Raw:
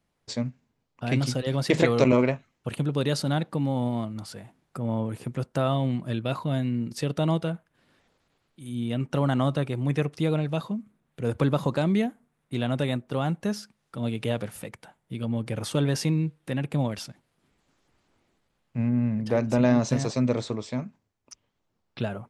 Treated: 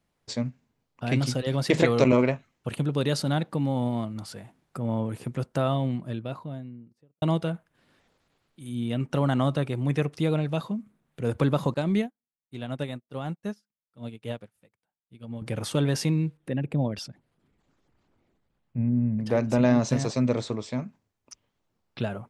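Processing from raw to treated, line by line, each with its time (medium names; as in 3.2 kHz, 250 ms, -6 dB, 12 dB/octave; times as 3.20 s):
5.45–7.22 s: studio fade out
11.74–15.42 s: upward expansion 2.5:1, over -44 dBFS
16.37–19.19 s: resonances exaggerated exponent 1.5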